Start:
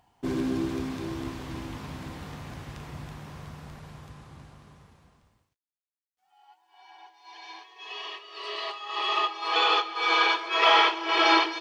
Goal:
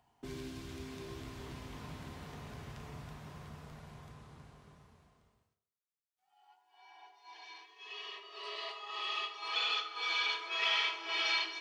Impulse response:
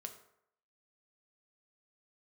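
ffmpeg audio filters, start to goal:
-filter_complex "[0:a]asettb=1/sr,asplit=3[link_01][link_02][link_03];[link_01]atrim=end=7.444[link_04];[link_02]atrim=start=7.44:end=8.16,asetpts=PTS-STARTPTS,afade=type=in:duration=0.004:curve=qsin,afade=type=out:start_time=0.716:duration=0.004:curve=qsin,equalizer=frequency=710:width=1.2:gain=-7.5[link_05];[link_03]atrim=start=8.156[link_06];[link_04][link_05]acrossfade=duration=0.004:curve1=hsin:curve2=qsin[link_07];[link_07][link_06]acrossfade=duration=0.004:curve1=qsin:curve2=hsin,acrossover=split=110|1900[link_08][link_09][link_10];[link_09]acompressor=threshold=-38dB:ratio=6[link_11];[link_08][link_11][link_10]amix=inputs=3:normalize=0[link_12];[1:a]atrim=start_sample=2205[link_13];[link_12][link_13]afir=irnorm=-1:irlink=0,volume=-2.5dB"

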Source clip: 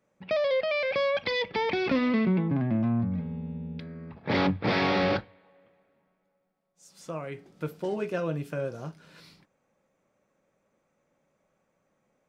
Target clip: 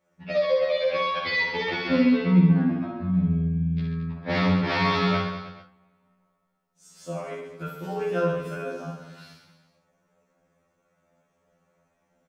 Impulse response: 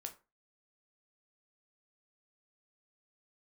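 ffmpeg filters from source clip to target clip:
-filter_complex "[0:a]aecho=1:1:60|132|218.4|322.1|446.5:0.631|0.398|0.251|0.158|0.1[link_01];[1:a]atrim=start_sample=2205[link_02];[link_01][link_02]afir=irnorm=-1:irlink=0,afftfilt=real='re*2*eq(mod(b,4),0)':imag='im*2*eq(mod(b,4),0)':win_size=2048:overlap=0.75,volume=7.5dB"

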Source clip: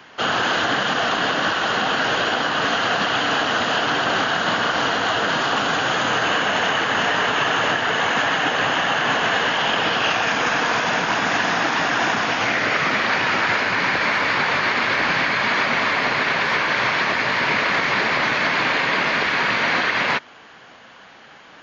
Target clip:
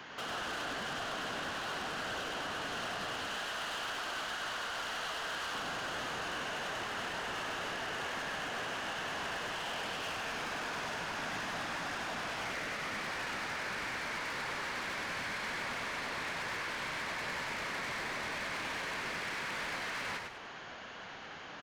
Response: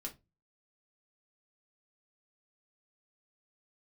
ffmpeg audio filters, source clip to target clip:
-filter_complex "[0:a]asettb=1/sr,asplit=3[link_01][link_02][link_03];[link_01]atrim=end=3.274[link_04];[link_02]atrim=start=3.27:end=5.55,asetpts=PTS-STARTPTS,afade=type=in:duration=0.004:curve=qsin,afade=type=out:start_time=2.276:duration=0.004:curve=qsin,highpass=frequency=950:poles=1[link_05];[link_03]atrim=start=5.546[link_06];[link_04][link_05]acrossfade=duration=0.004:curve1=hsin:curve2=qsin[link_07];[link_07][link_06]acrossfade=duration=0.004:curve1=qsin:curve2=hsin,acompressor=threshold=-28dB:ratio=8,asoftclip=type=tanh:threshold=-34.5dB,asplit=6[link_08][link_09][link_10][link_11][link_12][link_13];[link_09]adelay=100,afreqshift=-58,volume=-4dB[link_14];[link_10]adelay=200,afreqshift=-116,volume=-12.4dB[link_15];[link_11]adelay=300,afreqshift=-174,volume=-20.8dB[link_16];[link_12]adelay=400,afreqshift=-232,volume=-29.2dB[link_17];[link_13]adelay=500,afreqshift=-290,volume=-37.6dB[link_18];[link_08][link_14][link_15][link_16][link_17][link_18]amix=inputs=6:normalize=0,volume=-3dB"

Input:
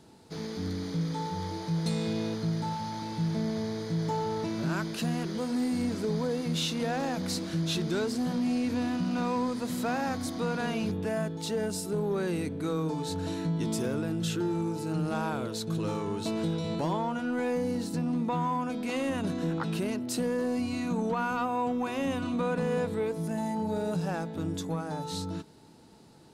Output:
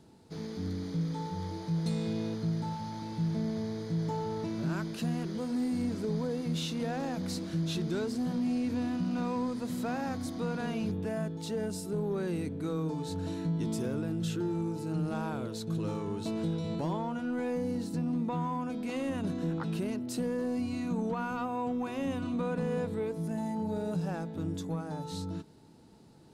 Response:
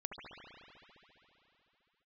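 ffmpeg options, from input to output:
-af "lowshelf=frequency=430:gain=6,areverse,acompressor=mode=upward:threshold=-47dB:ratio=2.5,areverse,volume=-6.5dB"

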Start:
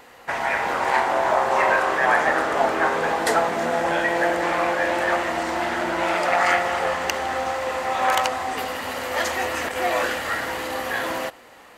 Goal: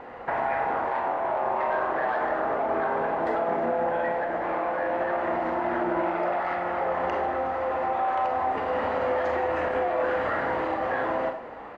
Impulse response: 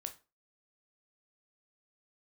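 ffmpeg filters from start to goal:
-filter_complex "[0:a]lowpass=1400,equalizer=frequency=700:width_type=o:width=0.77:gain=3,acontrast=81,alimiter=limit=-13.5dB:level=0:latency=1,acompressor=threshold=-24dB:ratio=6,asplit=2[link_01][link_02];[link_02]adelay=100,highpass=300,lowpass=3400,asoftclip=type=hard:threshold=-24dB,volume=-20dB[link_03];[link_01][link_03]amix=inputs=2:normalize=0[link_04];[1:a]atrim=start_sample=2205,asetrate=25578,aresample=44100[link_05];[link_04][link_05]afir=irnorm=-1:irlink=0"

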